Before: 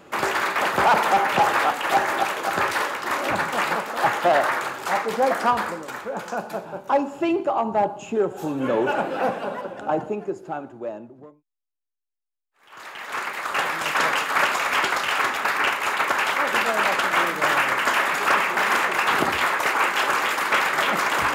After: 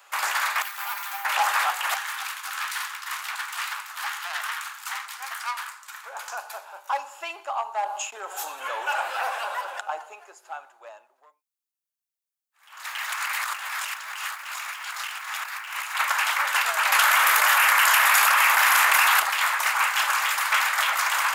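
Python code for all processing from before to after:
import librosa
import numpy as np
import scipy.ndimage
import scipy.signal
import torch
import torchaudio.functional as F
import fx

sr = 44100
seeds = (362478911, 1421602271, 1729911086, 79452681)

y = fx.chain(x, sr, fx.peak_eq(hz=570.0, db=-12.0, octaves=1.4),
    fx.comb_fb(f0_hz=200.0, decay_s=0.16, harmonics='all', damping=0.0, mix_pct=80),
    fx.resample_bad(factor=3, down='none', up='hold'), at=(0.62, 1.25))
y = fx.chain(y, sr, fx.highpass(hz=1000.0, slope=24),
    fx.tube_stage(drive_db=21.0, bias=0.8), at=(1.94, 6.04))
y = fx.chain(y, sr, fx.gate_hold(open_db=-27.0, close_db=-31.0, hold_ms=71.0, range_db=-21, attack_ms=1.4, release_ms=100.0),
    fx.env_flatten(amount_pct=50), at=(7.86, 9.81))
y = fx.chain(y, sr, fx.peak_eq(hz=200.0, db=-14.5, octaves=2.1),
    fx.over_compress(threshold_db=-32.0, ratio=-1.0),
    fx.quant_dither(seeds[0], bits=10, dither='none'), at=(12.84, 15.95))
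y = fx.chain(y, sr, fx.peak_eq(hz=12000.0, db=7.0, octaves=0.42),
    fx.env_flatten(amount_pct=100), at=(16.92, 19.2))
y = scipy.signal.sosfilt(scipy.signal.butter(4, 830.0, 'highpass', fs=sr, output='sos'), y)
y = fx.high_shelf(y, sr, hz=5500.0, db=10.0)
y = y * librosa.db_to_amplitude(-2.0)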